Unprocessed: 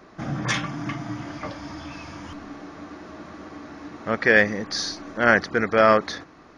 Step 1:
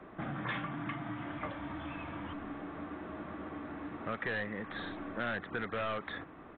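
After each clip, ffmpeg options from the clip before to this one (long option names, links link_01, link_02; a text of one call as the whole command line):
ffmpeg -i in.wav -filter_complex "[0:a]aresample=8000,asoftclip=type=tanh:threshold=-19dB,aresample=44100,aemphasis=mode=reproduction:type=75kf,acrossover=split=180|990|2000[link_01][link_02][link_03][link_04];[link_01]acompressor=threshold=-46dB:ratio=4[link_05];[link_02]acompressor=threshold=-40dB:ratio=4[link_06];[link_03]acompressor=threshold=-38dB:ratio=4[link_07];[link_04]acompressor=threshold=-44dB:ratio=4[link_08];[link_05][link_06][link_07][link_08]amix=inputs=4:normalize=0,volume=-1.5dB" out.wav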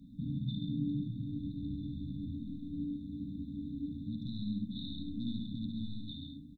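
ffmpeg -i in.wav -filter_complex "[0:a]asplit=2[link_01][link_02];[link_02]aecho=0:1:134:0.531[link_03];[link_01][link_03]amix=inputs=2:normalize=0,afftfilt=real='re*(1-between(b*sr/4096,300,3500))':imag='im*(1-between(b*sr/4096,300,3500))':win_size=4096:overlap=0.75,asplit=2[link_04][link_05];[link_05]aecho=0:1:58|72:0.251|0.447[link_06];[link_04][link_06]amix=inputs=2:normalize=0,volume=4dB" out.wav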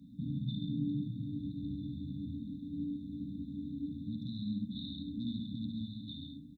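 ffmpeg -i in.wav -af "highpass=74" out.wav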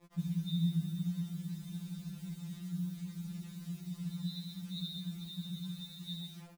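ffmpeg -i in.wav -af "agate=range=-33dB:threshold=-44dB:ratio=3:detection=peak,acrusher=bits=9:mix=0:aa=0.000001,afftfilt=real='re*2.83*eq(mod(b,8),0)':imag='im*2.83*eq(mod(b,8),0)':win_size=2048:overlap=0.75,volume=7dB" out.wav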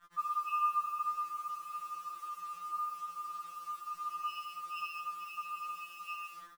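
ffmpeg -i in.wav -af "afftfilt=real='real(if(lt(b,960),b+48*(1-2*mod(floor(b/48),2)),b),0)':imag='imag(if(lt(b,960),b+48*(1-2*mod(floor(b/48),2)),b),0)':win_size=2048:overlap=0.75" out.wav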